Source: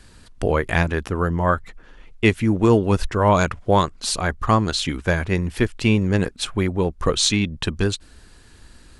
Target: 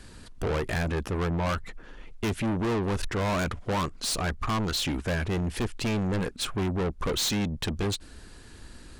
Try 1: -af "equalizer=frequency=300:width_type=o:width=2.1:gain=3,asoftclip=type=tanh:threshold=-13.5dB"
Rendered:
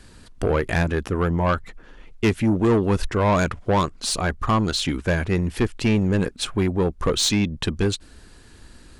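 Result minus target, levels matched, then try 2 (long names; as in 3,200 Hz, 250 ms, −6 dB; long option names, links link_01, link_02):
soft clipping: distortion −7 dB
-af "equalizer=frequency=300:width_type=o:width=2.1:gain=3,asoftclip=type=tanh:threshold=-25dB"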